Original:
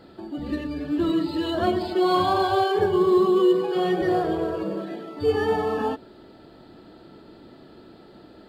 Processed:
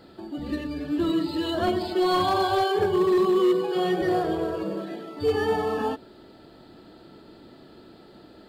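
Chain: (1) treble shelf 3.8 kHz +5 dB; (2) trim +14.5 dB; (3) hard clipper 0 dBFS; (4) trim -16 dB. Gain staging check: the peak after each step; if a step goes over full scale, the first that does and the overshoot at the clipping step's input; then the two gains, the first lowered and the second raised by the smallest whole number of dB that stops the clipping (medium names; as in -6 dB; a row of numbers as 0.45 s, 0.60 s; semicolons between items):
-8.5 dBFS, +6.0 dBFS, 0.0 dBFS, -16.0 dBFS; step 2, 6.0 dB; step 2 +8.5 dB, step 4 -10 dB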